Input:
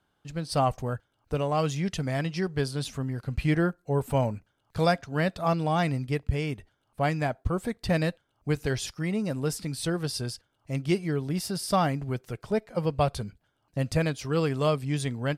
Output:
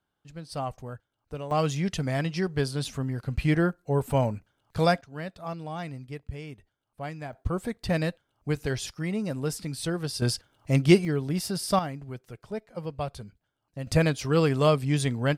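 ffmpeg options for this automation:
-af "asetnsamples=n=441:p=0,asendcmd='1.51 volume volume 1dB;5.01 volume volume -10dB;7.33 volume volume -1dB;10.22 volume volume 8dB;11.05 volume volume 1dB;11.79 volume volume -7.5dB;13.87 volume volume 3.5dB',volume=-8dB"

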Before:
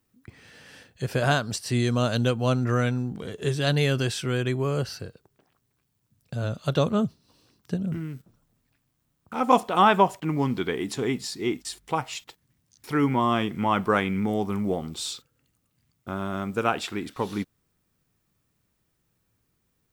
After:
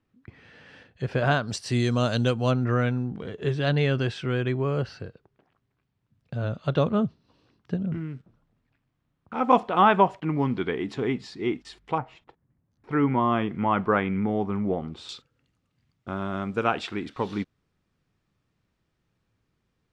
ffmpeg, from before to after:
-af "asetnsamples=n=441:p=0,asendcmd='1.48 lowpass f 6700;2.51 lowpass f 2900;11.98 lowpass f 1100;12.91 lowpass f 2200;15.09 lowpass f 4300',lowpass=3k"

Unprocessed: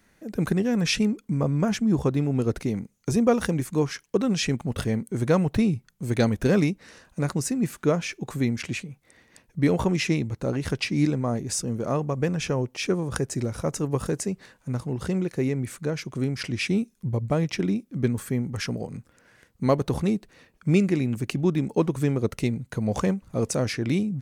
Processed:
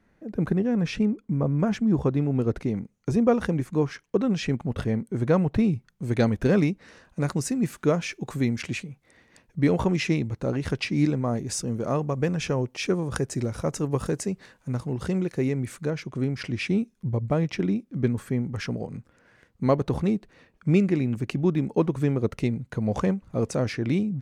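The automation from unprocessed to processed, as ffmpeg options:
-af "asetnsamples=n=441:p=0,asendcmd='1.59 lowpass f 2000;5.64 lowpass f 3300;7.21 lowpass f 8200;8.89 lowpass f 4600;11.33 lowpass f 7600;15.9 lowpass f 2900',lowpass=f=1.1k:p=1"

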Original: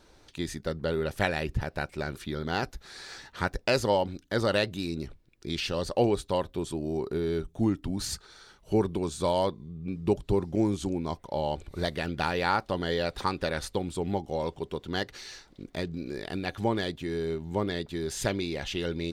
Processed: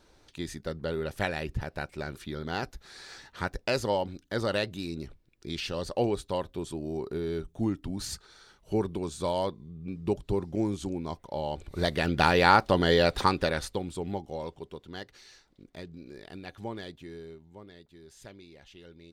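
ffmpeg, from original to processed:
-af "volume=6.5dB,afade=t=in:st=11.52:d=0.76:silence=0.334965,afade=t=out:st=13.1:d=0.63:silence=0.375837,afade=t=out:st=13.73:d=1.2:silence=0.398107,afade=t=out:st=17.01:d=0.5:silence=0.334965"

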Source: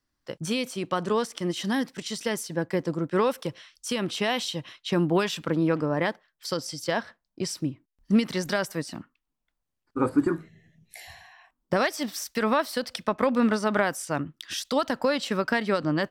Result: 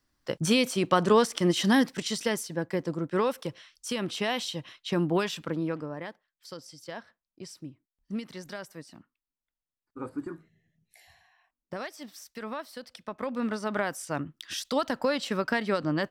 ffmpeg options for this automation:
-af "volume=15dB,afade=t=out:st=1.78:d=0.75:silence=0.421697,afade=t=out:st=5.23:d=0.79:silence=0.316228,afade=t=in:st=13:d=1.35:silence=0.298538"

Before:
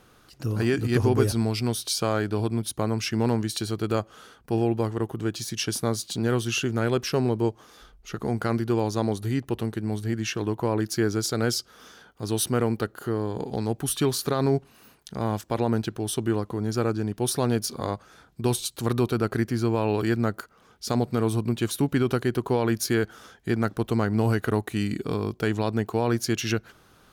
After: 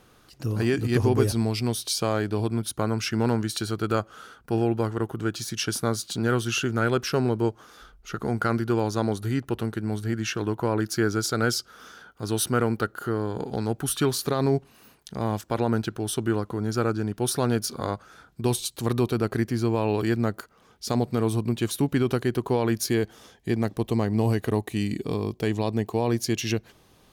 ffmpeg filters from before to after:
-af "asetnsamples=n=441:p=0,asendcmd='2.48 equalizer g 8;14.12 equalizer g -1.5;15.42 equalizer g 5.5;18.42 equalizer g -3.5;22.9 equalizer g -14',equalizer=f=1.4k:t=o:w=0.31:g=-2.5"

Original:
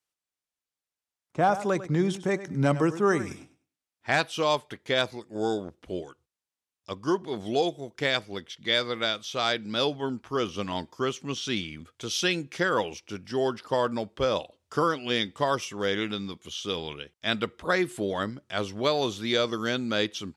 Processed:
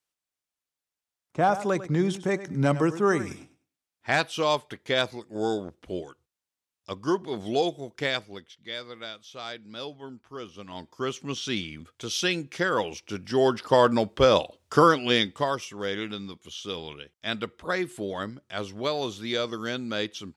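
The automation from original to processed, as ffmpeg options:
-af "volume=18.5dB,afade=t=out:st=7.91:d=0.66:silence=0.266073,afade=t=in:st=10.66:d=0.53:silence=0.281838,afade=t=in:st=12.78:d=1.08:silence=0.446684,afade=t=out:st=14.9:d=0.66:silence=0.316228"

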